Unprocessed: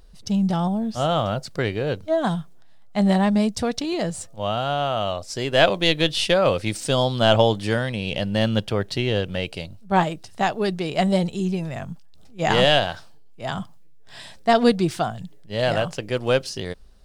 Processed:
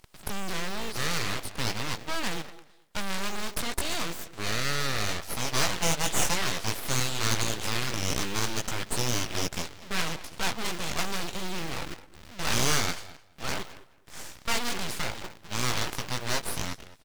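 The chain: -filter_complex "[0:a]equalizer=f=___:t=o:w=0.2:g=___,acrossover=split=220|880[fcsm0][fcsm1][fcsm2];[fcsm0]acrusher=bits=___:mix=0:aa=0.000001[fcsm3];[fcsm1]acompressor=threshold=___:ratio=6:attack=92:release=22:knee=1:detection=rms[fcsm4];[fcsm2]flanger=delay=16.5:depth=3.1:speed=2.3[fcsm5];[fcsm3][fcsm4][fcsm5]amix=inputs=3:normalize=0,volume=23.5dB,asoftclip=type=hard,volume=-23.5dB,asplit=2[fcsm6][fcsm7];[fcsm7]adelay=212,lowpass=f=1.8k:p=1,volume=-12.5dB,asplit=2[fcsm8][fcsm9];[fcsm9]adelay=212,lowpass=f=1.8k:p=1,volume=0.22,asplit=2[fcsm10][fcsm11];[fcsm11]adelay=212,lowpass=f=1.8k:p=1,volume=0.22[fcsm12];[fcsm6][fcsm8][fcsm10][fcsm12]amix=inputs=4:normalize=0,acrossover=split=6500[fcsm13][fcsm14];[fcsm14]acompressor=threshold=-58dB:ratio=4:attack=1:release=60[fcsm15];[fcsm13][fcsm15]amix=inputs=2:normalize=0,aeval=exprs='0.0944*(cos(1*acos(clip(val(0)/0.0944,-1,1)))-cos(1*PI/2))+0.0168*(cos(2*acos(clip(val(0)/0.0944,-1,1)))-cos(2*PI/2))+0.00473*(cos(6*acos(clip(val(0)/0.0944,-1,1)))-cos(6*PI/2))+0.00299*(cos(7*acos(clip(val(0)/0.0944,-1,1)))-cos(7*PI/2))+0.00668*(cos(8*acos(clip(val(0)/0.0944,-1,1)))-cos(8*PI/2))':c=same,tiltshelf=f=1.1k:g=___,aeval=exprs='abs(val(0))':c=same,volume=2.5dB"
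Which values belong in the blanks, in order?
320, 3, 6, -35dB, -8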